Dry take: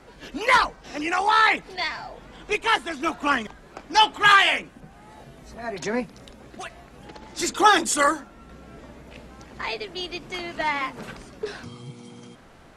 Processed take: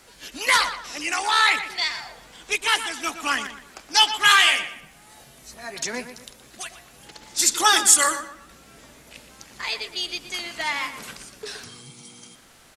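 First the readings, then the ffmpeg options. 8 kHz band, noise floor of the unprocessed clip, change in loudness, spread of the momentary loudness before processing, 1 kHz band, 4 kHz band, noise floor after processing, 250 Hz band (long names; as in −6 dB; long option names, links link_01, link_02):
+11.0 dB, −49 dBFS, +1.5 dB, 22 LU, −3.0 dB, +5.0 dB, −51 dBFS, −7.5 dB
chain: -filter_complex "[0:a]crystalizer=i=9:c=0,asplit=2[link_01][link_02];[link_02]adelay=120,lowpass=frequency=3100:poles=1,volume=-10dB,asplit=2[link_03][link_04];[link_04]adelay=120,lowpass=frequency=3100:poles=1,volume=0.37,asplit=2[link_05][link_06];[link_06]adelay=120,lowpass=frequency=3100:poles=1,volume=0.37,asplit=2[link_07][link_08];[link_08]adelay=120,lowpass=frequency=3100:poles=1,volume=0.37[link_09];[link_03][link_05][link_07][link_09]amix=inputs=4:normalize=0[link_10];[link_01][link_10]amix=inputs=2:normalize=0,volume=-8.5dB"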